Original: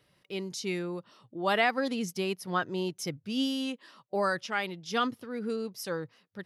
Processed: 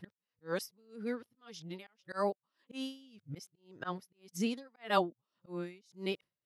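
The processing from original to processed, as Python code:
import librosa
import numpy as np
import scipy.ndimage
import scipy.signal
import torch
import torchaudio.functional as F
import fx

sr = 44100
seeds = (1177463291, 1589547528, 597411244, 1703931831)

y = x[::-1].copy()
y = fx.auto_swell(y, sr, attack_ms=168.0)
y = y * 10.0 ** (-32 * (0.5 - 0.5 * np.cos(2.0 * np.pi * 1.8 * np.arange(len(y)) / sr)) / 20.0)
y = y * 10.0 ** (1.0 / 20.0)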